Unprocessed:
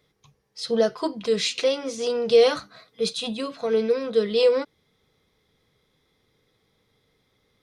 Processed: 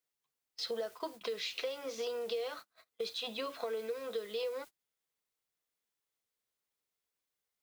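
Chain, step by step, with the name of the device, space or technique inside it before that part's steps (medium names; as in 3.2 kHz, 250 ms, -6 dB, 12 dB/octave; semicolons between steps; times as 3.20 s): baby monitor (band-pass 480–4200 Hz; compression 10:1, threshold -35 dBFS, peak gain reduction 19.5 dB; white noise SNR 19 dB; gate -47 dBFS, range -29 dB)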